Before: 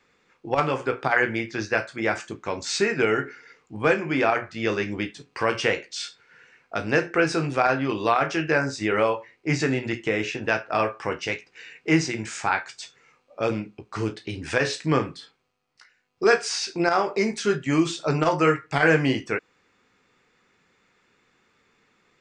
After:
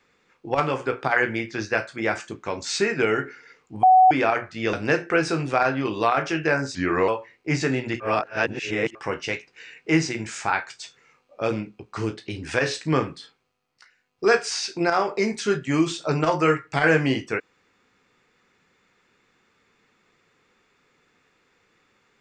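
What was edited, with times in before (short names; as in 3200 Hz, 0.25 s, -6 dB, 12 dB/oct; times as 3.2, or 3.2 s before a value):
3.83–4.11 bleep 747 Hz -10 dBFS
4.73–6.77 cut
8.79–9.07 speed 85%
9.99–10.94 reverse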